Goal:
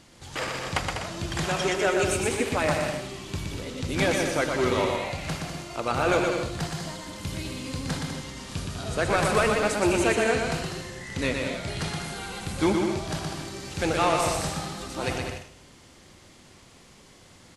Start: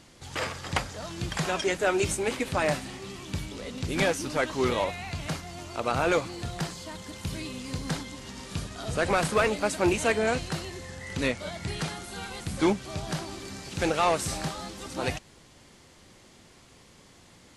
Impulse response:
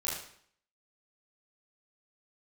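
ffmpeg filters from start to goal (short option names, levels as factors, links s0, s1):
-filter_complex "[0:a]aecho=1:1:120|198|248.7|281.7|303.1:0.631|0.398|0.251|0.158|0.1,asplit=2[s0][s1];[1:a]atrim=start_sample=2205,adelay=43[s2];[s1][s2]afir=irnorm=-1:irlink=0,volume=0.141[s3];[s0][s3]amix=inputs=2:normalize=0"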